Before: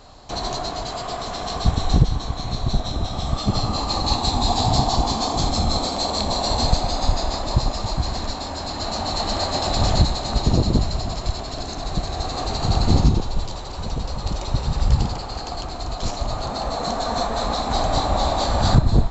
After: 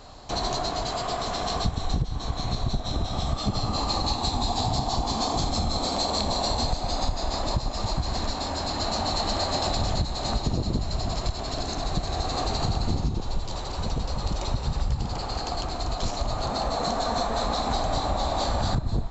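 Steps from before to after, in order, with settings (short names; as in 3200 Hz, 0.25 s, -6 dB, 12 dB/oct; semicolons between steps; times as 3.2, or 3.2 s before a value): compressor 6:1, threshold -22 dBFS, peak gain reduction 13.5 dB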